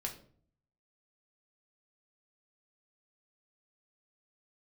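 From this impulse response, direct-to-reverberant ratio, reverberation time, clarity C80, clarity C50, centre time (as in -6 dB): 1.0 dB, 0.50 s, 14.5 dB, 10.5 dB, 15 ms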